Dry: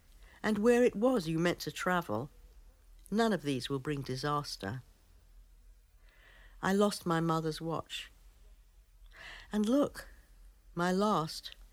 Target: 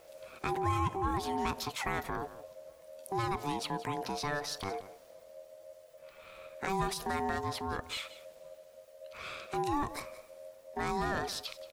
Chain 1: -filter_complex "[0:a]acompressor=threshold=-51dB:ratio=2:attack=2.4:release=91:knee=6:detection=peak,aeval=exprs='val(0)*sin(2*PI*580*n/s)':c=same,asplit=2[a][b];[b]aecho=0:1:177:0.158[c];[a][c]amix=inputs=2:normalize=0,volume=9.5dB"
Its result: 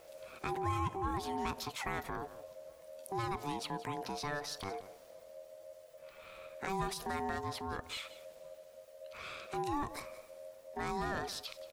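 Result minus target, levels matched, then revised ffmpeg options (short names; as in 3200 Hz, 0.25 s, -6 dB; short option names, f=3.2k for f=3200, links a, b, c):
compressor: peak gain reduction +4 dB
-filter_complex "[0:a]acompressor=threshold=-43.5dB:ratio=2:attack=2.4:release=91:knee=6:detection=peak,aeval=exprs='val(0)*sin(2*PI*580*n/s)':c=same,asplit=2[a][b];[b]aecho=0:1:177:0.158[c];[a][c]amix=inputs=2:normalize=0,volume=9.5dB"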